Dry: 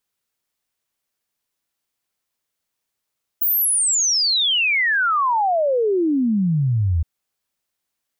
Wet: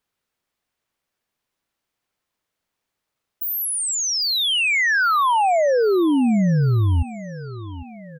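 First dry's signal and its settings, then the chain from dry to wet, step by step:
exponential sine sweep 16,000 Hz → 77 Hz 3.62 s −15.5 dBFS
high-shelf EQ 4,300 Hz −11 dB
in parallel at −3 dB: brickwall limiter −27 dBFS
on the sum: repeating echo 802 ms, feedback 49%, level −16 dB

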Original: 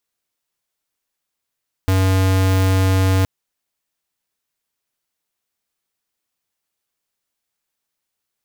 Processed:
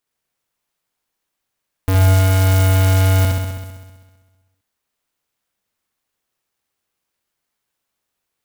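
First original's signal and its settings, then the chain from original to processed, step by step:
tone square 94.7 Hz −15 dBFS 1.37 s
on a send: flutter between parallel walls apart 11.1 metres, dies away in 1.4 s
on the sum: converter with an unsteady clock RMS 0.057 ms

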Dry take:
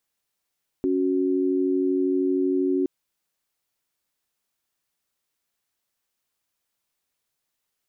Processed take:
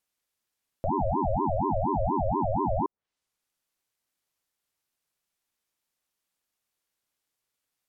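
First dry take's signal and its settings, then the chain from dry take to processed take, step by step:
held notes C#4/F#4 sine, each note −22.5 dBFS 2.02 s
treble cut that deepens with the level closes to 510 Hz, closed at −23.5 dBFS
ring modulator whose carrier an LFO sweeps 470 Hz, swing 45%, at 4.2 Hz

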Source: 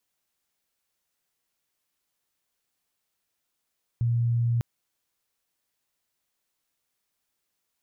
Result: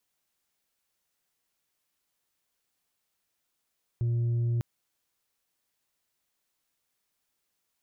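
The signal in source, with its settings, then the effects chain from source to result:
tone sine 118 Hz −21 dBFS 0.60 s
soft clipping −24 dBFS

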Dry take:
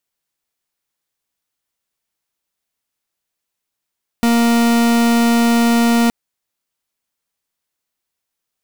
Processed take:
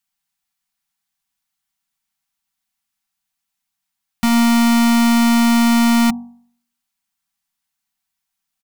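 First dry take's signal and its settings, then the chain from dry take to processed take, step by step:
pulse wave 234 Hz, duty 43% −13 dBFS 1.87 s
elliptic band-stop filter 260–730 Hz
comb filter 5.2 ms, depth 43%
hum removal 47.7 Hz, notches 24

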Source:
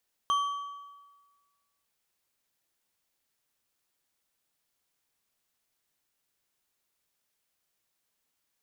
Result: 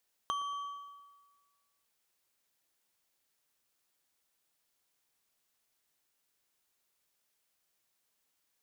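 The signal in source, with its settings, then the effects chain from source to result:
struck metal bar, lowest mode 1,140 Hz, decay 1.41 s, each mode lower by 10 dB, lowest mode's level −22 dB
bass and treble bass −3 dB, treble +1 dB
downward compressor 6 to 1, threshold −34 dBFS
feedback echo with a low-pass in the loop 116 ms, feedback 63%, low-pass 1,200 Hz, level −16 dB

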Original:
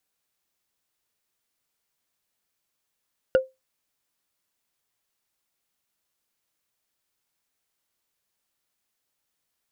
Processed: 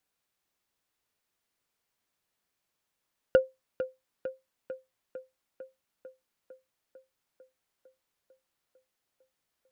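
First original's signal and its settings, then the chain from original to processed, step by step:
struck wood, lowest mode 523 Hz, decay 0.20 s, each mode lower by 9 dB, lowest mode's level −11 dB
high-shelf EQ 4,200 Hz −5.5 dB
tape delay 450 ms, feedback 75%, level −10 dB, low-pass 3,000 Hz

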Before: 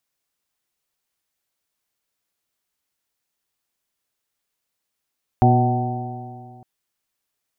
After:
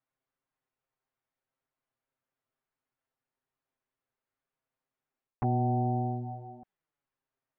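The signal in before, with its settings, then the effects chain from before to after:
stiff-string partials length 1.21 s, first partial 121 Hz, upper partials −4/−8/−20/−12.5/−1/−18.5 dB, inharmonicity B 0.0023, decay 2.22 s, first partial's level −13 dB
low-pass that shuts in the quiet parts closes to 1,600 Hz, open at −20.5 dBFS
reversed playback
downward compressor 8 to 1, threshold −24 dBFS
reversed playback
flanger swept by the level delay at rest 7.6 ms, full sweep at −26 dBFS

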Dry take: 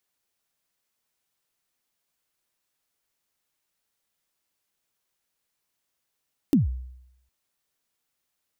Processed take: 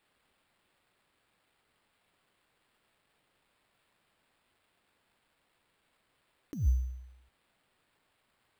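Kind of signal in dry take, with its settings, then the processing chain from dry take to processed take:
synth kick length 0.76 s, from 320 Hz, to 63 Hz, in 144 ms, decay 0.81 s, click on, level −13 dB
compressor whose output falls as the input rises −27 dBFS, ratio −0.5
sample-rate reduction 6,100 Hz, jitter 0%

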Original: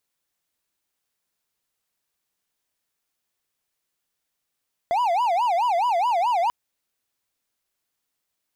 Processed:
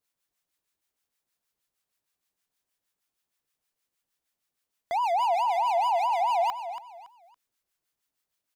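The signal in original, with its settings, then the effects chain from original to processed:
siren wail 674–993 Hz 4.7 per second triangle −16.5 dBFS 1.59 s
two-band tremolo in antiphase 6.4 Hz, depth 70%, crossover 930 Hz
on a send: repeating echo 281 ms, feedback 29%, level −11 dB

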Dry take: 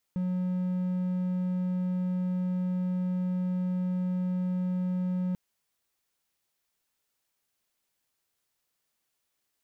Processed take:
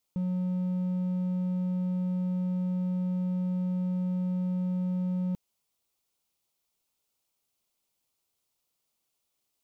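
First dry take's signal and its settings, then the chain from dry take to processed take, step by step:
tone triangle 182 Hz −24.5 dBFS 5.19 s
parametric band 1,700 Hz −11.5 dB 0.49 octaves

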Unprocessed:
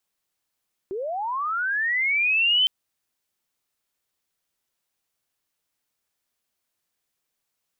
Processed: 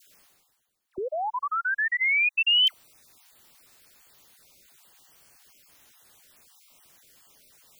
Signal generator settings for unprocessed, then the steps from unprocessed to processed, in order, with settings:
glide linear 360 Hz → 3,100 Hz −27 dBFS → −16 dBFS 1.76 s
time-frequency cells dropped at random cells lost 25%
reversed playback
upward compression, threshold −38 dBFS
reversed playback
all-pass dispersion lows, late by 74 ms, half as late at 1,200 Hz

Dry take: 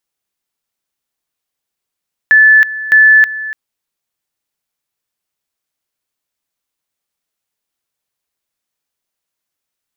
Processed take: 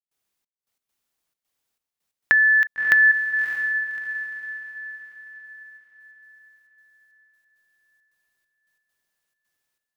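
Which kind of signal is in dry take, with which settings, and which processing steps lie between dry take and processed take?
tone at two levels in turn 1,740 Hz −3 dBFS, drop 16 dB, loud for 0.32 s, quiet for 0.29 s, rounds 2
downward compressor 10 to 1, threshold −15 dBFS
gate pattern ".xxx..x.xxxx" 135 BPM −60 dB
on a send: feedback delay with all-pass diffusion 610 ms, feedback 43%, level −8 dB

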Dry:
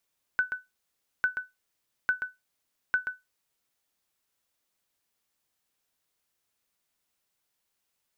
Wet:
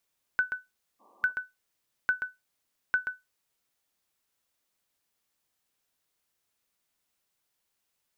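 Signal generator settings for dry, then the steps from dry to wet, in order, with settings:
ping with an echo 1,500 Hz, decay 0.19 s, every 0.85 s, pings 4, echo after 0.13 s, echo −7.5 dB −16.5 dBFS
healed spectral selection 0:01.03–0:01.29, 210–1,200 Hz after

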